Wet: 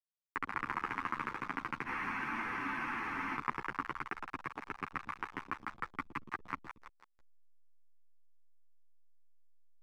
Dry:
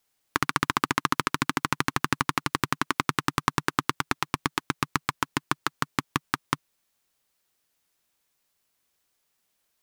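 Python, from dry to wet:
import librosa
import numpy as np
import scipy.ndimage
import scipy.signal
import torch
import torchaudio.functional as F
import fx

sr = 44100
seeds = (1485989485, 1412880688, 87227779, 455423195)

y = scipy.signal.medfilt(x, 15)
y = scipy.signal.sosfilt(scipy.signal.ellip(3, 1.0, 40, [130.0, 2300.0], 'bandpass', fs=sr, output='sos'), y)
y = fx.tilt_shelf(y, sr, db=-5.0, hz=890.0)
y = fx.echo_split(y, sr, split_hz=810.0, low_ms=115, high_ms=165, feedback_pct=52, wet_db=-7.0)
y = fx.backlash(y, sr, play_db=-31.0)
y = fx.spec_freeze(y, sr, seeds[0], at_s=1.88, hold_s=1.48)
y = fx.ensemble(y, sr)
y = F.gain(torch.from_numpy(y), -7.0).numpy()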